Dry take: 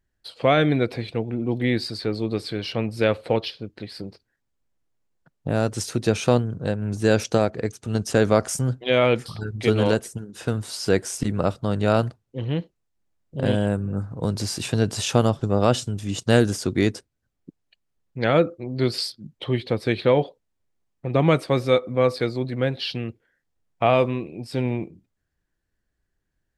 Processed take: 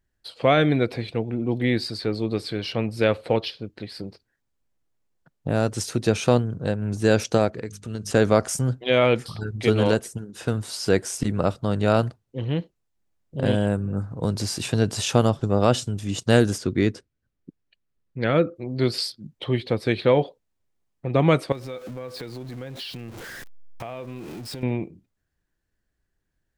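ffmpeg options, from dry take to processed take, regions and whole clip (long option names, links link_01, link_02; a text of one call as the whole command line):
ffmpeg -i in.wav -filter_complex "[0:a]asettb=1/sr,asplit=3[link_01][link_02][link_03];[link_01]atrim=end=7.524[link_04];[link_02]atrim=start=7.52:end=8.11,asetpts=PTS-STARTPTS,afade=type=in:duration=0.004:curve=qsin,afade=type=out:start_time=0.586:duration=0.004:curve=qsin,equalizer=frequency=770:width_type=o:width=0.3:gain=-13.5,bandreject=frequency=50.46:width_type=h:width=4,bandreject=frequency=100.92:width_type=h:width=4,bandreject=frequency=151.38:width_type=h:width=4,bandreject=frequency=201.84:width_type=h:width=4,bandreject=frequency=252.3:width_type=h:width=4,acompressor=threshold=-29dB:ratio=2.5:attack=3.2:release=140:knee=1:detection=peak[link_05];[link_03]atrim=start=8.106[link_06];[link_04][link_05]acrossfade=duration=0.004:curve1=hsin:curve2=qsin[link_07];[link_07][link_06]acrossfade=duration=0.004:curve1=qsin:curve2=hsin,asettb=1/sr,asplit=3[link_08][link_09][link_10];[link_08]atrim=end=16.584[link_11];[link_09]atrim=start=16.58:end=18.56,asetpts=PTS-STARTPTS,afade=type=in:duration=0.004:curve=qsin,afade=type=out:start_time=1.976:duration=0.004:curve=qsin,lowpass=frequency=3000:poles=1,equalizer=frequency=780:width=1.8:gain=-6[link_12];[link_10]atrim=start=18.556[link_13];[link_11][link_12]acrossfade=duration=0.004:curve1=hsin:curve2=qsin[link_14];[link_14][link_13]acrossfade=duration=0.004:curve1=qsin:curve2=hsin,asettb=1/sr,asplit=3[link_15][link_16][link_17];[link_15]atrim=end=21.524[link_18];[link_16]atrim=start=21.52:end=24.63,asetpts=PTS-STARTPTS,afade=type=in:duration=0.004:curve=qsin,afade=type=out:start_time=3.106:duration=0.004:curve=qsin,aeval=exprs='val(0)+0.5*0.0237*sgn(val(0))':channel_layout=same,acompressor=threshold=-33dB:ratio=5:attack=3.2:release=140:knee=1:detection=peak[link_19];[link_17]atrim=start=24.626[link_20];[link_18][link_19]acrossfade=duration=0.004:curve1=hsin:curve2=qsin[link_21];[link_21][link_20]acrossfade=duration=0.004:curve1=qsin:curve2=hsin" out.wav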